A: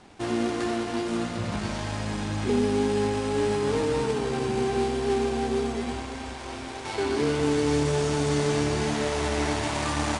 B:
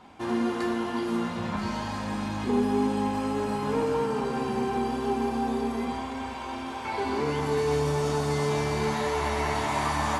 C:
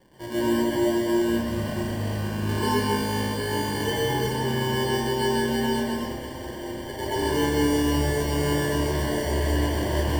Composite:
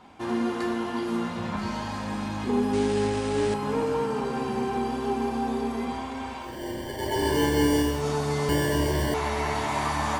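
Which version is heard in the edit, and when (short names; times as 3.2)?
B
2.73–3.54 from A
6.5–7.93 from C, crossfade 0.24 s
8.49–9.14 from C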